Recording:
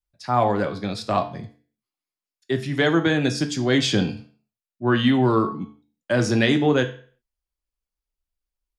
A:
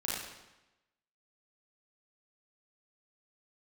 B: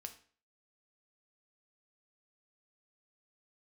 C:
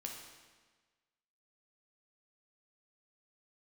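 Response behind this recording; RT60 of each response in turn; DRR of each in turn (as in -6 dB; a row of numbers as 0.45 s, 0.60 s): B; 1.0 s, 0.45 s, 1.4 s; -7.0 dB, 6.0 dB, 0.5 dB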